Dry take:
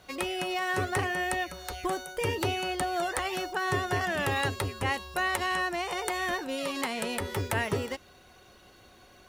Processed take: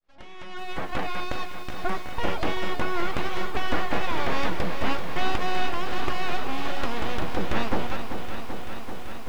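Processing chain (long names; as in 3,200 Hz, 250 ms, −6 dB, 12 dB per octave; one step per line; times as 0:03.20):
fade in at the beginning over 1.31 s
0:01.20–0:01.79: high-pass filter 1,000 Hz 12 dB per octave
full-wave rectification
head-to-tape spacing loss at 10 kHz 23 dB
feedback echo at a low word length 386 ms, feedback 80%, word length 9 bits, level −9 dB
level +7.5 dB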